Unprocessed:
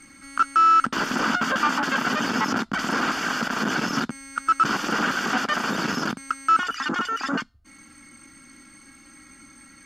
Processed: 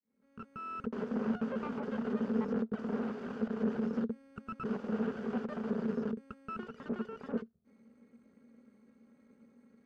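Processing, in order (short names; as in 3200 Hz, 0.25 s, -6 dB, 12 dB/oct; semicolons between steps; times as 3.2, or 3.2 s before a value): opening faded in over 0.84 s; half-wave rectifier; double band-pass 310 Hz, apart 0.92 oct; gain +5 dB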